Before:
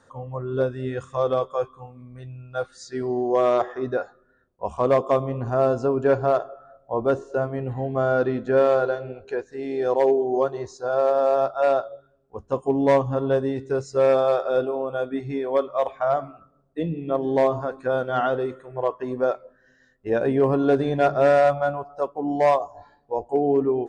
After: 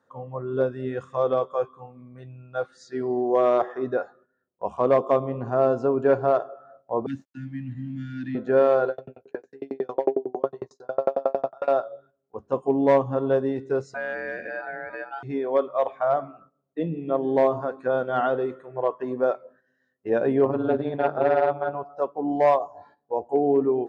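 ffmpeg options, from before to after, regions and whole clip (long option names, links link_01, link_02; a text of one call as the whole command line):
ffmpeg -i in.wav -filter_complex "[0:a]asettb=1/sr,asplit=3[link_01][link_02][link_03];[link_01]atrim=end=7.064[link_04];[link_02]atrim=start=7.06:end=8.35,asetpts=PTS-STARTPTS,afade=type=in:duration=0.004:curve=qsin,afade=type=out:start_time=1.286:duration=0.004:curve=qsin,agate=range=-33dB:threshold=-34dB:ratio=3:release=100:detection=peak,asuperstop=centerf=700:order=20:qfactor=0.53,aeval=exprs='sgn(val(0))*max(abs(val(0))-0.001,0)':channel_layout=same[link_05];[link_03]atrim=start=8.346[link_06];[link_04][link_05]acrossfade=duration=0.004:curve1=hsin:curve2=qsin[link_07];[link_07][link_06]acrossfade=duration=0.004:curve1=qsin:curve2=hsin,asettb=1/sr,asplit=3[link_08][link_09][link_10];[link_08]atrim=end=8.894[link_11];[link_09]atrim=start=8.89:end=11.68,asetpts=PTS-STARTPTS,afade=type=in:duration=0.004:curve=qsin,afade=type=out:start_time=2.786:duration=0.004:curve=qsin,asplit=2[link_12][link_13];[link_13]adelay=15,volume=-3dB[link_14];[link_12][link_14]amix=inputs=2:normalize=0,atrim=end_sample=123039,aeval=exprs='val(0)*pow(10,-37*if(lt(mod(11*n/s,1),2*abs(11)/1000),1-mod(11*n/s,1)/(2*abs(11)/1000),(mod(11*n/s,1)-2*abs(11)/1000)/(1-2*abs(11)/1000))/20)':channel_layout=same[link_15];[link_10]atrim=start=11.676[link_16];[link_11][link_15]acrossfade=duration=0.004:curve1=hsin:curve2=qsin[link_17];[link_17][link_16]acrossfade=duration=0.004:curve1=qsin:curve2=hsin,asettb=1/sr,asplit=3[link_18][link_19][link_20];[link_18]atrim=end=13.944[link_21];[link_19]atrim=start=13.94:end=15.23,asetpts=PTS-STARTPTS,afade=type=in:duration=0.004:curve=qsin,afade=type=out:start_time=1.286:duration=0.004:curve=qsin,acompressor=threshold=-28dB:ratio=2.5:attack=3.2:release=140:knee=1:detection=peak,aeval=exprs='val(0)*sin(2*PI*1100*n/s)':channel_layout=same[link_22];[link_20]atrim=start=15.226[link_23];[link_21][link_22]acrossfade=duration=0.004:curve1=hsin:curve2=qsin[link_24];[link_24][link_23]acrossfade=duration=0.004:curve1=qsin:curve2=hsin,asettb=1/sr,asplit=3[link_25][link_26][link_27];[link_25]atrim=end=20.454[link_28];[link_26]atrim=start=20.45:end=21.75,asetpts=PTS-STARTPTS,afade=type=in:duration=0.004:curve=qsin,afade=type=out:start_time=1.296:duration=0.004:curve=qsin,lowpass=frequency=4500:width=0.5412,lowpass=frequency=4500:width=1.3066,tremolo=f=160:d=0.857[link_29];[link_27]atrim=start=21.746[link_30];[link_28][link_29]acrossfade=duration=0.004:curve1=hsin:curve2=qsin[link_31];[link_31][link_30]acrossfade=duration=0.004:curve1=qsin:curve2=hsin,highpass=150,agate=range=-10dB:threshold=-53dB:ratio=16:detection=peak,lowpass=frequency=2200:poles=1" out.wav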